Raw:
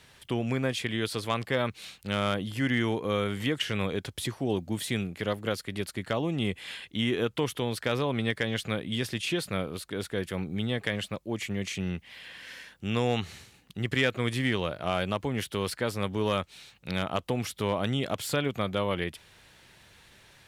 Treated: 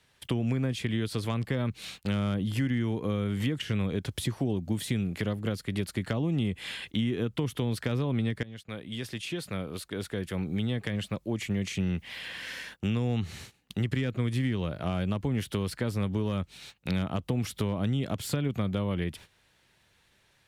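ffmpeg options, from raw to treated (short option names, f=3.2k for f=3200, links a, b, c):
-filter_complex "[0:a]asplit=2[a][b];[a]atrim=end=8.43,asetpts=PTS-STARTPTS,afade=t=out:st=8.426:d=0.004:c=hsin:silence=0.11885[c];[b]atrim=start=8.43,asetpts=PTS-STARTPTS,afade=t=in:d=3.57:silence=0.11885[d];[c][d]concat=n=2:v=0:a=1,acrossover=split=280[e][f];[f]acompressor=threshold=-42dB:ratio=4[g];[e][g]amix=inputs=2:normalize=0,agate=range=-17dB:threshold=-52dB:ratio=16:detection=peak,acompressor=threshold=-31dB:ratio=6,volume=7dB"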